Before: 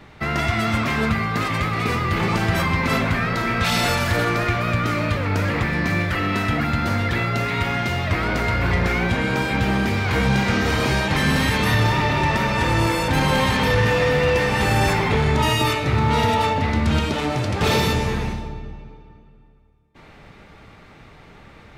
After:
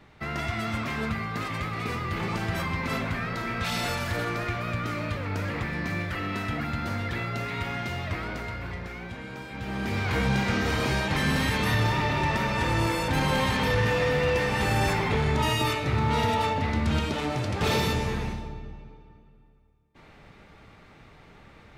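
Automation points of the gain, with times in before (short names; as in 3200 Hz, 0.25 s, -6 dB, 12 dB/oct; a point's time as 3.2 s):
8.05 s -9 dB
8.89 s -17.5 dB
9.51 s -17.5 dB
9.98 s -6 dB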